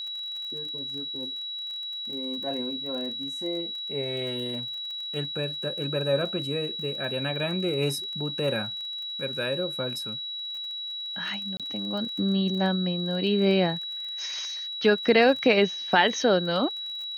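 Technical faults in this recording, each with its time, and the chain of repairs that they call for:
crackle 24/s -35 dBFS
tone 3900 Hz -32 dBFS
11.57–11.6 gap 27 ms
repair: de-click; notch 3900 Hz, Q 30; interpolate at 11.57, 27 ms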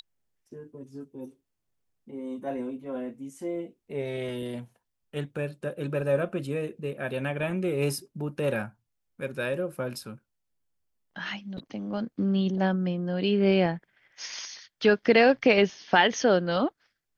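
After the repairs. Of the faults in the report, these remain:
none

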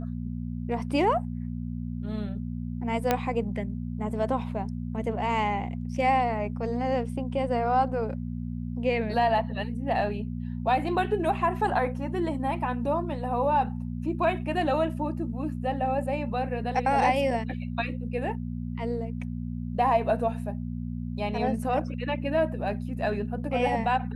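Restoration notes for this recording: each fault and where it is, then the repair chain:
hum 60 Hz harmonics 4 -33 dBFS
3.11 pop -9 dBFS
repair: de-click; de-hum 60 Hz, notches 4

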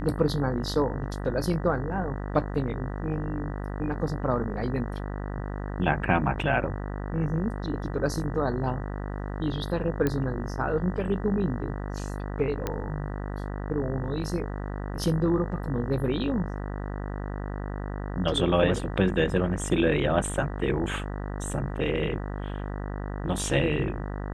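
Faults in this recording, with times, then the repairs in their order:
buzz 50 Hz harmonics 39 -33 dBFS
10.07 pop -13 dBFS
12.67 pop -14 dBFS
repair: de-click; de-hum 50 Hz, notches 39

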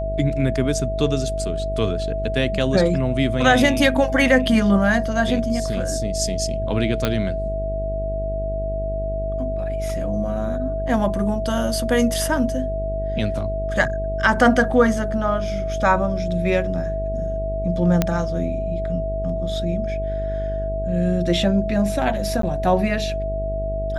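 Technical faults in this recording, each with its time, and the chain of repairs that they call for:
buzz 50 Hz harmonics 14 -27 dBFS
tone 650 Hz -25 dBFS
7.05 pop -6 dBFS
18.02 pop -4 dBFS
22.42–22.43 gap 13 ms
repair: de-click; de-hum 50 Hz, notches 14; notch 650 Hz, Q 30; interpolate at 22.42, 13 ms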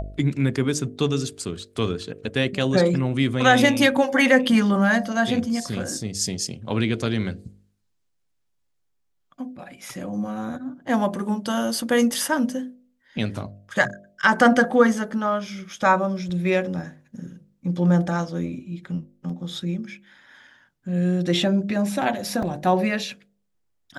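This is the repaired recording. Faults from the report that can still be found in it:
none

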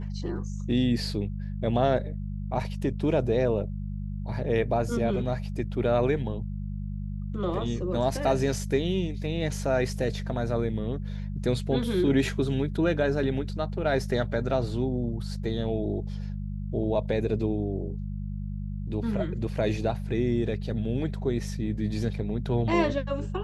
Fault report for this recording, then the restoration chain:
hum 50 Hz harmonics 4 -33 dBFS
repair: de-hum 50 Hz, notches 4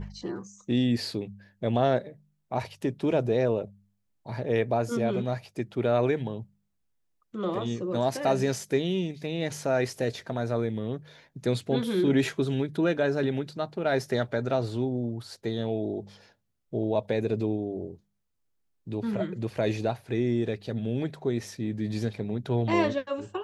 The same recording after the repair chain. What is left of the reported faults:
none

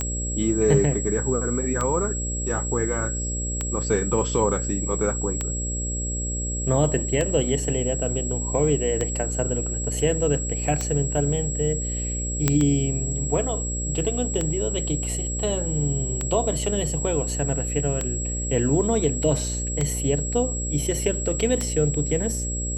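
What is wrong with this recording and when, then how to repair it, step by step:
buzz 60 Hz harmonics 10 -29 dBFS
tick 33 1/3 rpm -11 dBFS
tone 7700 Hz -29 dBFS
12.48 pop -4 dBFS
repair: de-click; de-hum 60 Hz, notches 10; notch 7700 Hz, Q 30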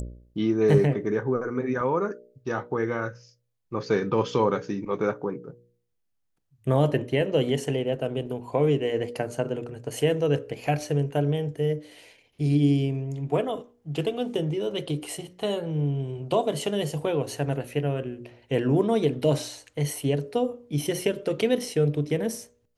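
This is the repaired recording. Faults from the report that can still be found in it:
none

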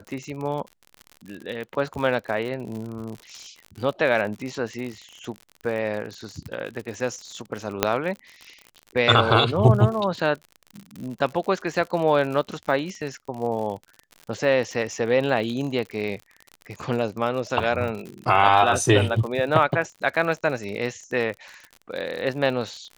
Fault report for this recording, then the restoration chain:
crackle 60/s -31 dBFS
7.83 pop -2 dBFS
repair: de-click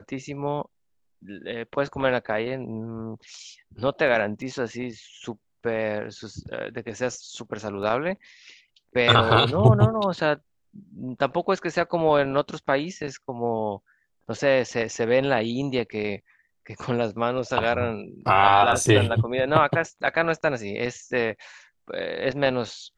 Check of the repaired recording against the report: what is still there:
7.83 pop

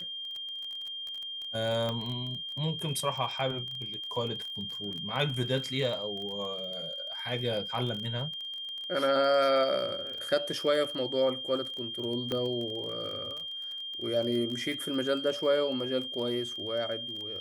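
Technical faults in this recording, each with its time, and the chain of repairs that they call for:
crackle 25/s -35 dBFS
tone 3200 Hz -36 dBFS
1.89 pop -20 dBFS
12.32 pop -19 dBFS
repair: de-click; notch 3200 Hz, Q 30

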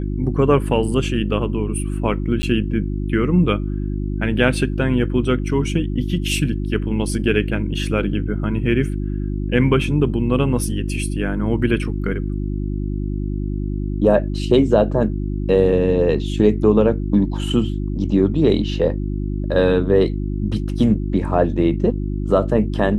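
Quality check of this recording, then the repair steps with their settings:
hum 50 Hz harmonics 7 -23 dBFS
2.42–2.43 gap 10 ms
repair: de-hum 50 Hz, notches 7; interpolate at 2.42, 10 ms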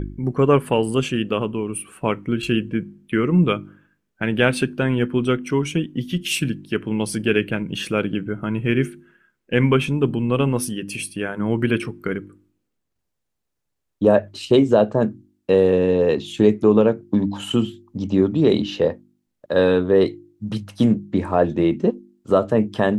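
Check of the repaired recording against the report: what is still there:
none

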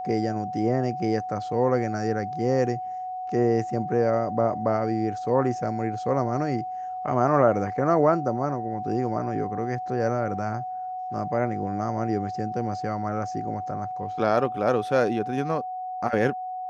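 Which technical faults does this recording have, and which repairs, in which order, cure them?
tone 740 Hz -30 dBFS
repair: notch 740 Hz, Q 30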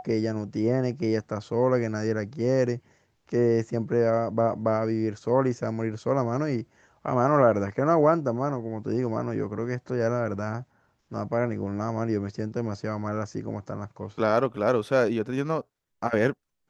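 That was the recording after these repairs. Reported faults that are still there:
none

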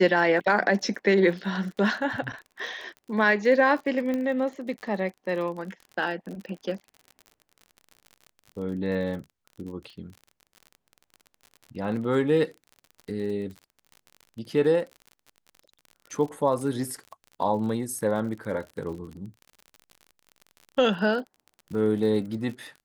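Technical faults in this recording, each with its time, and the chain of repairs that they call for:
crackle 42/s -36 dBFS
4.14 pop -18 dBFS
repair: de-click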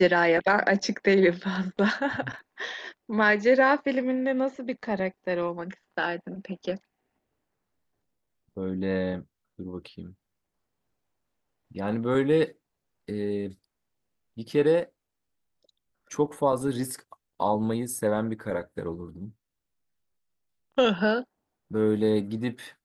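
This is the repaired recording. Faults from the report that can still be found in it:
none

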